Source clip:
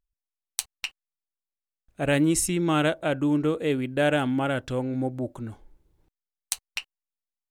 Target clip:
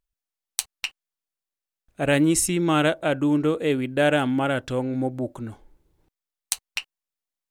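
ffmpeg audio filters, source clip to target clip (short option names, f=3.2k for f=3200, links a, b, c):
-af "lowshelf=f=120:g=-4.5,volume=3dB"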